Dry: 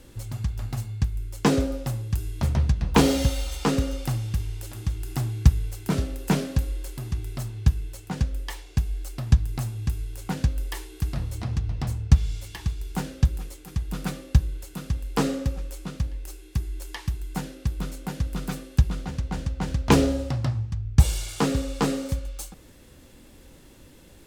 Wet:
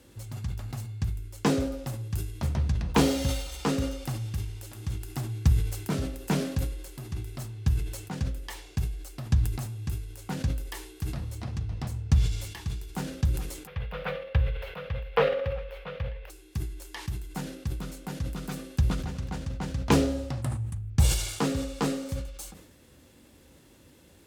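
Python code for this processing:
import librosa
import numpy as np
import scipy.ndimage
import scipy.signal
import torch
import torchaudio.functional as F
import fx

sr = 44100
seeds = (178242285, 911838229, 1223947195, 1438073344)

y = fx.curve_eq(x, sr, hz=(110.0, 200.0, 320.0, 480.0, 740.0, 2300.0, 3300.0, 7600.0, 15000.0), db=(0, -8, -25, 14, 4, 9, 4, -28, -11), at=(13.67, 16.3))
y = fx.echo_throw(y, sr, start_s=18.57, length_s=0.4, ms=250, feedback_pct=40, wet_db=-12.0)
y = fx.high_shelf_res(y, sr, hz=7100.0, db=11.0, q=3.0, at=(20.42, 20.9))
y = scipy.signal.sosfilt(scipy.signal.butter(4, 52.0, 'highpass', fs=sr, output='sos'), y)
y = fx.hum_notches(y, sr, base_hz=60, count=3)
y = fx.sustainer(y, sr, db_per_s=64.0)
y = y * librosa.db_to_amplitude(-4.5)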